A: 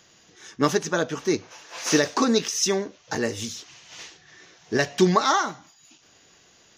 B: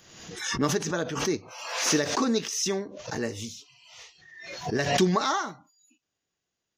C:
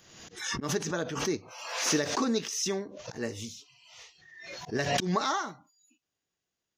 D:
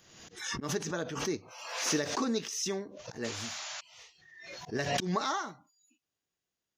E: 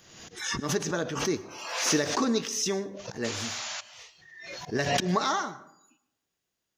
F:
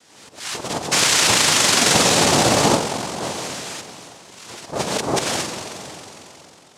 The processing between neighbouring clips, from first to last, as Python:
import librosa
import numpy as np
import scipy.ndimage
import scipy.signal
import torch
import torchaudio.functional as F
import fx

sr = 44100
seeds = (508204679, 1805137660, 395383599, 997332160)

y1 = fx.low_shelf(x, sr, hz=250.0, db=4.5)
y1 = fx.noise_reduce_blind(y1, sr, reduce_db=22)
y1 = fx.pre_swell(y1, sr, db_per_s=56.0)
y1 = y1 * librosa.db_to_amplitude(-6.5)
y2 = fx.auto_swell(y1, sr, attack_ms=109.0)
y2 = y2 * librosa.db_to_amplitude(-3.0)
y3 = fx.spec_paint(y2, sr, seeds[0], shape='noise', start_s=3.24, length_s=0.57, low_hz=560.0, high_hz=7300.0, level_db=-38.0)
y3 = y3 * librosa.db_to_amplitude(-3.0)
y4 = fx.rev_plate(y3, sr, seeds[1], rt60_s=0.77, hf_ratio=0.45, predelay_ms=95, drr_db=17.0)
y4 = y4 * librosa.db_to_amplitude(5.0)
y5 = fx.spec_paint(y4, sr, seeds[2], shape='fall', start_s=0.91, length_s=1.86, low_hz=700.0, high_hz=1600.0, level_db=-21.0)
y5 = fx.rev_spring(y5, sr, rt60_s=3.5, pass_ms=(44,), chirp_ms=55, drr_db=5.5)
y5 = fx.noise_vocoder(y5, sr, seeds[3], bands=2)
y5 = y5 * librosa.db_to_amplitude(3.5)